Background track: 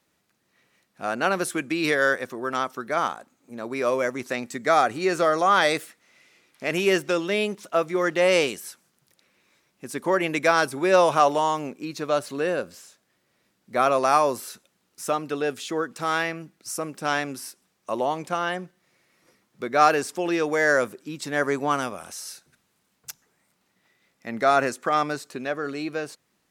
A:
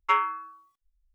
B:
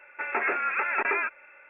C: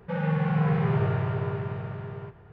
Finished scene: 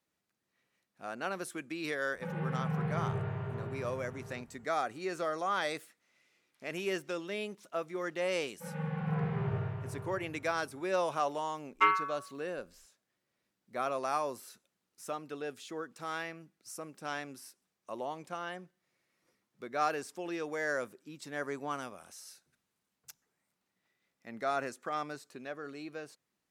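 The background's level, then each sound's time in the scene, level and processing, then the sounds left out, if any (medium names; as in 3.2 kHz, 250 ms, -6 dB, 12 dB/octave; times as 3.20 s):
background track -13.5 dB
2.13 s: add C -10 dB
8.51 s: add C -10 dB + three bands expanded up and down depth 100%
11.72 s: add A -4.5 dB + comb 4.7 ms, depth 71%
not used: B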